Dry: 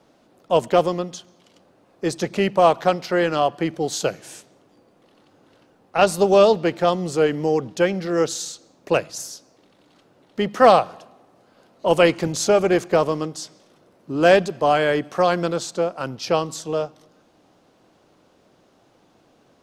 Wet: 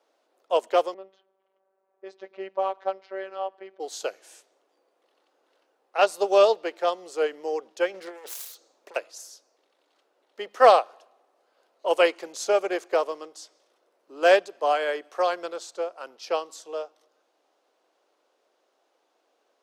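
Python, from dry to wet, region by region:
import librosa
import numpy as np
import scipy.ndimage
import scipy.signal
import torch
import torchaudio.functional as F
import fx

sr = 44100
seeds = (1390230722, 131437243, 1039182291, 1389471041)

y = fx.chain(x, sr, fx.env_lowpass(base_hz=1800.0, full_db=-14.0),
    fx.spacing_loss(db_at_10k=25),
    fx.robotise(hz=192.0), at=(0.94, 3.8))
y = fx.chain(y, sr, fx.self_delay(depth_ms=0.46),
    fx.over_compress(threshold_db=-25.0, ratio=-0.5), at=(7.94, 8.96))
y = scipy.signal.sosfilt(scipy.signal.butter(4, 400.0, 'highpass', fs=sr, output='sos'), y)
y = fx.upward_expand(y, sr, threshold_db=-27.0, expansion=1.5)
y = y * 10.0 ** (-1.5 / 20.0)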